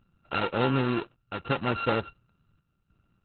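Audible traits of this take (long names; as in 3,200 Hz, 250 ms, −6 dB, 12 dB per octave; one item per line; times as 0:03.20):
a buzz of ramps at a fixed pitch in blocks of 32 samples
chopped level 0.69 Hz, depth 60%, duty 80%
Opus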